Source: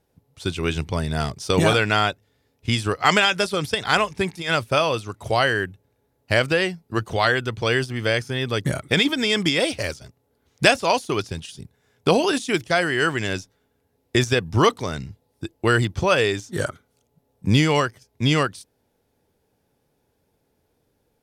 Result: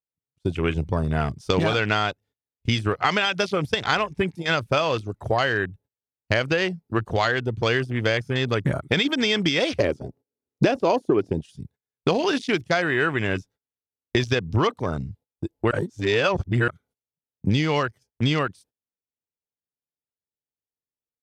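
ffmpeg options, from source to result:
-filter_complex "[0:a]asettb=1/sr,asplit=3[a][b][c];[a]atrim=end=9.794[d];[b]atrim=start=9.79:end=11.41,asetpts=PTS-STARTPTS,afade=t=in:d=0.004:c=qsin,afade=t=out:st=1.616:d=0.004:c=qsin,equalizer=f=340:w=0.54:g=15[e];[c]atrim=start=11.406[f];[d][e]acrossfade=d=0.004:c1=hsin:c2=qsin[g];[g][f]acrossfade=d=0.004:c1=qsin:c2=hsin,asplit=3[h][i][j];[h]atrim=end=15.712[k];[i]atrim=start=15.708:end=16.682,asetpts=PTS-STARTPTS,areverse[l];[j]atrim=start=16.678[m];[k][l]acrossfade=d=0.004:c1=hsin:c2=hsin[n];[n][m]acrossfade=d=0.004:c1=hsin:c2=hsin,afwtdn=0.0251,agate=range=-22dB:threshold=-50dB:ratio=16:detection=peak,acompressor=threshold=-20dB:ratio=6,volume=2.5dB"

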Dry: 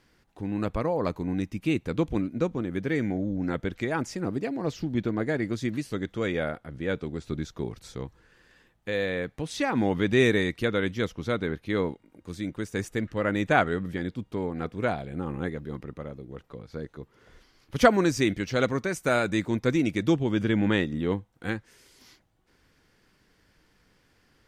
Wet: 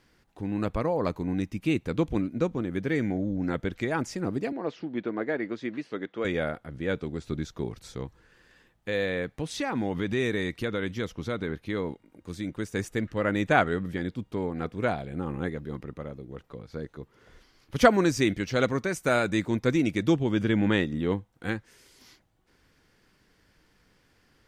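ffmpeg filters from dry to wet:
-filter_complex "[0:a]asettb=1/sr,asplit=3[a][b][c];[a]atrim=end=4.524[d];[b]atrim=start=4.52:end=6.25,asetpts=PTS-STARTPTS,afade=t=in:d=0.004:c=qsin,afade=t=out:st=1.726:d=0.004:c=qsin,highpass=290,lowpass=2.9k[e];[c]atrim=start=6.246[f];[d][e]acrossfade=d=0.004:c1=hsin:c2=qsin[g];[g][f]acrossfade=d=0.004:c1=qsin:c2=hsin,asettb=1/sr,asplit=3[h][i][j];[h]atrim=end=9.494[k];[i]atrim=start=9.49:end=12.53,asetpts=PTS-STARTPTS,afade=t=in:d=0.004:c=qsin,afade=t=out:st=3.036:d=0.004:c=qsin,acompressor=threshold=-27dB:ratio=2:attack=3.2:release=140:knee=1:detection=peak[l];[j]atrim=start=12.526[m];[k][l]acrossfade=d=0.004:c1=hsin:c2=qsin[n];[n][m]acrossfade=d=0.004:c1=qsin:c2=hsin"

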